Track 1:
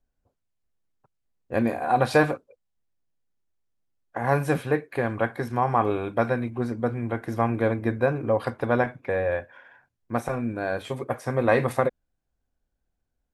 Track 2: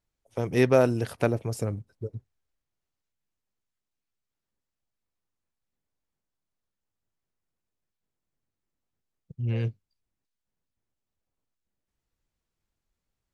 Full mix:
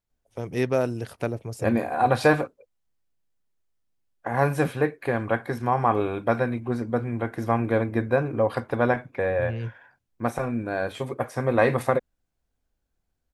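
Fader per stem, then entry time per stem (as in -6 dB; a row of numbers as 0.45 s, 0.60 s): +0.5 dB, -3.5 dB; 0.10 s, 0.00 s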